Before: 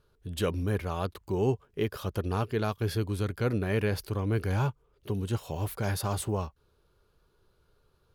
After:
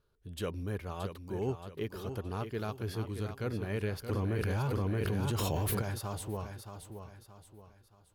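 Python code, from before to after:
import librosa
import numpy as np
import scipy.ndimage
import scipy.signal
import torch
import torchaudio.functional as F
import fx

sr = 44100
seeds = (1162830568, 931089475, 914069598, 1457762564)

y = fx.echo_feedback(x, sr, ms=624, feedback_pct=37, wet_db=-8.5)
y = fx.env_flatten(y, sr, amount_pct=100, at=(4.09, 5.82))
y = F.gain(torch.from_numpy(y), -7.5).numpy()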